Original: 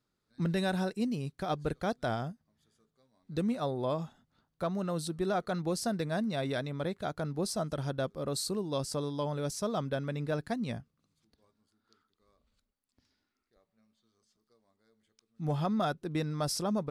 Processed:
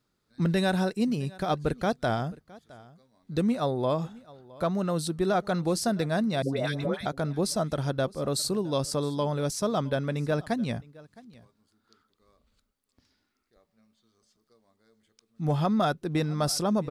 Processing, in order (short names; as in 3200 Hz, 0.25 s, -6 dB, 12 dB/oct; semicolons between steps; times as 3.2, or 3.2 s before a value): 6.42–7.06 dispersion highs, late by 0.144 s, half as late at 790 Hz; echo 0.664 s -22 dB; gain +5.5 dB